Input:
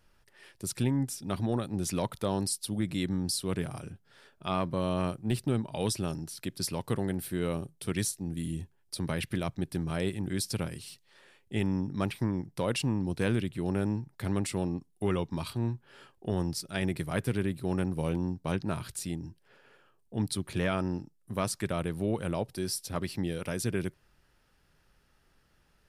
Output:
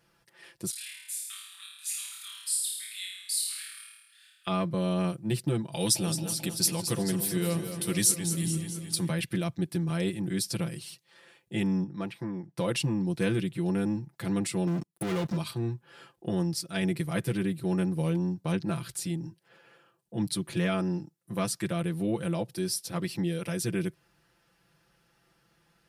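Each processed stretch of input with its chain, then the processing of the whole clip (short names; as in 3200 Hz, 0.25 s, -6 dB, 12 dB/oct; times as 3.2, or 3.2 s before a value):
0.7–4.47 Bessel high-pass 2900 Hz, order 8 + bell 5600 Hz -13 dB 0.31 oct + flutter echo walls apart 4.6 m, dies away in 1 s
5.72–9.09 high shelf 4000 Hz +9.5 dB + warbling echo 0.218 s, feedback 65%, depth 75 cents, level -9.5 dB
11.84–12.58 HPF 1200 Hz 6 dB/oct + tilt -4 dB/oct
14.67–15.37 sample leveller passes 5 + compressor 5:1, threshold -31 dBFS
whole clip: HPF 83 Hz; dynamic EQ 930 Hz, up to -4 dB, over -43 dBFS, Q 0.72; comb 5.9 ms, depth 86%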